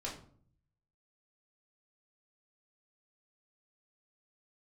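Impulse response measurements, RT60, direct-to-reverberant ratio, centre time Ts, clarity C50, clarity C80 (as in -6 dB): 0.55 s, -5.0 dB, 27 ms, 7.5 dB, 12.0 dB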